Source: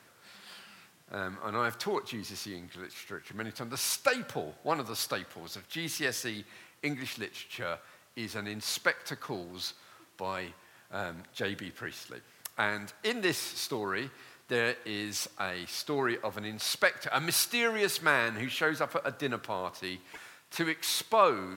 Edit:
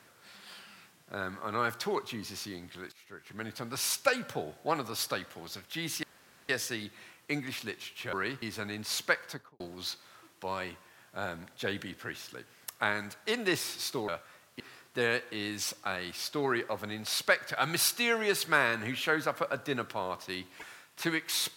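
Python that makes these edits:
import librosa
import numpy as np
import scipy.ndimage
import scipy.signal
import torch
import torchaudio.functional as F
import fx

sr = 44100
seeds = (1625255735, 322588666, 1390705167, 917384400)

y = fx.studio_fade_out(x, sr, start_s=8.99, length_s=0.38)
y = fx.edit(y, sr, fx.fade_in_from(start_s=2.92, length_s=0.61, floor_db=-17.5),
    fx.insert_room_tone(at_s=6.03, length_s=0.46),
    fx.swap(start_s=7.67, length_s=0.52, other_s=13.85, other_length_s=0.29), tone=tone)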